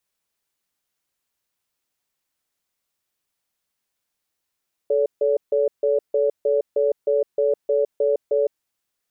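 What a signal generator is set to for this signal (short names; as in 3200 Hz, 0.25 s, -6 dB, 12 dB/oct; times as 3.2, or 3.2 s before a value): cadence 435 Hz, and 569 Hz, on 0.16 s, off 0.15 s, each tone -19 dBFS 3.65 s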